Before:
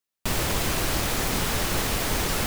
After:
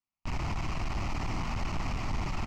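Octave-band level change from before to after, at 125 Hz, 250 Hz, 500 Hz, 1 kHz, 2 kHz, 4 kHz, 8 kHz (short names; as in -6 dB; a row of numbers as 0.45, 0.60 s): -4.0, -7.5, -13.5, -7.0, -11.5, -16.0, -22.0 dB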